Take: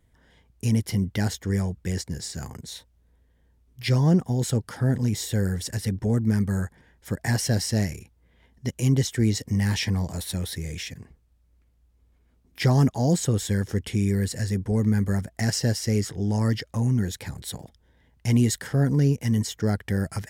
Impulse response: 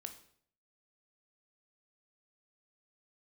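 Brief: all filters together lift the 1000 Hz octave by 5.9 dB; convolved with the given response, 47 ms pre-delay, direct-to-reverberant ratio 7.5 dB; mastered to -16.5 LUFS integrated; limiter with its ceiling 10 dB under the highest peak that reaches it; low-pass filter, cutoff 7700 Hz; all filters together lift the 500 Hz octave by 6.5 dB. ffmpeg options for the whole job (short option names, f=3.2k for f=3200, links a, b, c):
-filter_complex "[0:a]lowpass=7.7k,equalizer=f=500:t=o:g=7,equalizer=f=1k:t=o:g=5,alimiter=limit=-16.5dB:level=0:latency=1,asplit=2[a][b];[1:a]atrim=start_sample=2205,adelay=47[c];[b][c]afir=irnorm=-1:irlink=0,volume=-3.5dB[d];[a][d]amix=inputs=2:normalize=0,volume=10.5dB"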